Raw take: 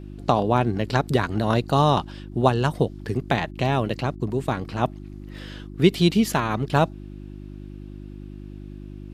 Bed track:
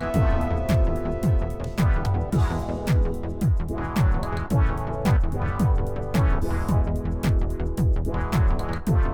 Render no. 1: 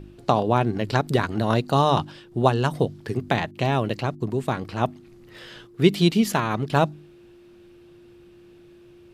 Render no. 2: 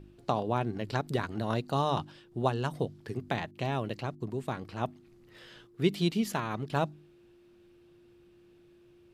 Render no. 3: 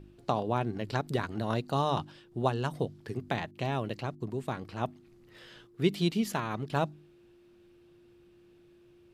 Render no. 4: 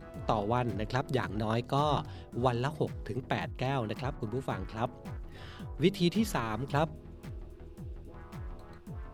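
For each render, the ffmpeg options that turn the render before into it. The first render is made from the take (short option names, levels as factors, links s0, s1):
-af "bandreject=f=50:t=h:w=4,bandreject=f=100:t=h:w=4,bandreject=f=150:t=h:w=4,bandreject=f=200:t=h:w=4,bandreject=f=250:t=h:w=4,bandreject=f=300:t=h:w=4"
-af "volume=0.335"
-af anull
-filter_complex "[1:a]volume=0.0794[s0];[0:a][s0]amix=inputs=2:normalize=0"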